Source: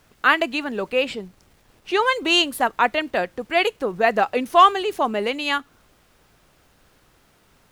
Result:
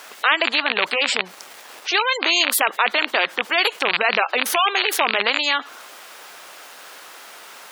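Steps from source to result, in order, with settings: rattling part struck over -36 dBFS, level -14 dBFS; HPF 690 Hz 12 dB/oct; spectral gate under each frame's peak -25 dB strong; in parallel at +3 dB: limiter -14.5 dBFS, peak gain reduction 11 dB; on the sum: spectral compressor 2:1; gain -1 dB

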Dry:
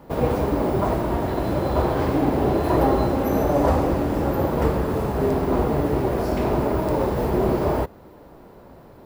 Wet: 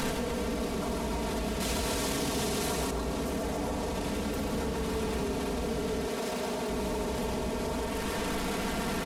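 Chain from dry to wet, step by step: delta modulation 64 kbps, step -22.5 dBFS; compressor 16:1, threshold -25 dBFS, peak gain reduction 12 dB; bell 730 Hz -3.5 dB 2 oct; comb 4.4 ms, depth 79%; darkening echo 0.139 s, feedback 79%, low-pass 4700 Hz, level -4.5 dB; wavefolder -18.5 dBFS; 6.08–6.7 HPF 310 Hz 6 dB/oct; limiter -24.5 dBFS, peak gain reduction 6 dB; 1.6–2.91 high shelf 2200 Hz +10.5 dB

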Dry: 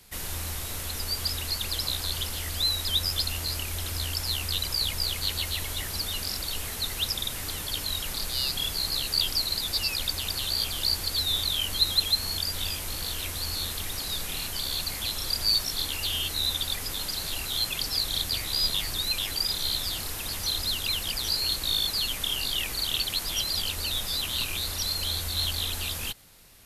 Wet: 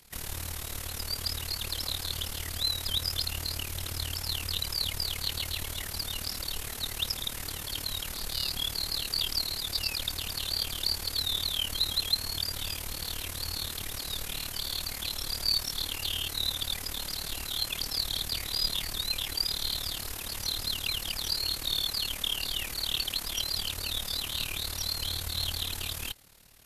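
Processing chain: AM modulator 37 Hz, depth 65%

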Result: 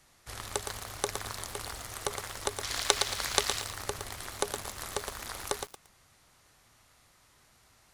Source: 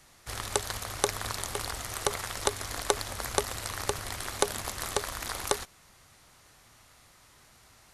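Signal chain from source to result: 2.63–3.61 bell 3700 Hz +11.5 dB 2.7 oct; lo-fi delay 0.115 s, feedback 35%, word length 6-bit, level -6 dB; gain -5 dB

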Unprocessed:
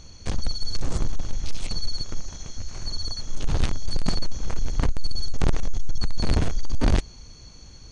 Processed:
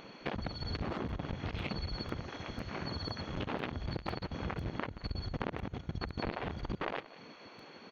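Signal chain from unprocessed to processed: one-sided fold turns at -16 dBFS; LPF 2900 Hz 24 dB/oct; spectral gate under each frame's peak -20 dB weak; compressor 6:1, threshold -40 dBFS, peak gain reduction 14 dB; echo 0.181 s -18 dB; crackling interface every 0.50 s, samples 64, repeat, from 0.59; gain +6.5 dB

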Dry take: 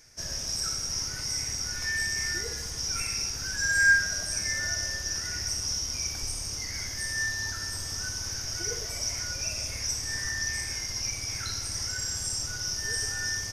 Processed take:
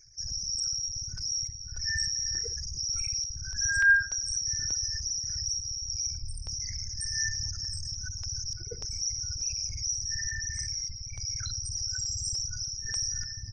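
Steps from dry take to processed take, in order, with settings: formant sharpening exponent 3; stepped notch 3.4 Hz 240–6500 Hz

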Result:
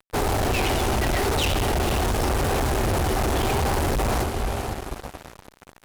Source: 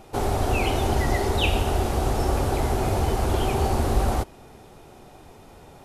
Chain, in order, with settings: vibrato 0.88 Hz 40 cents; diffused feedback echo 0.487 s, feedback 43%, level -12 dB; fuzz box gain 34 dB, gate -39 dBFS; gain -7.5 dB

